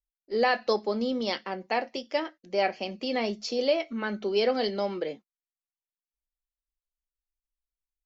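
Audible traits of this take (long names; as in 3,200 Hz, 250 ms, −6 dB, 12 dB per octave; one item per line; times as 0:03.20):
background noise floor −96 dBFS
spectral slope −2.0 dB per octave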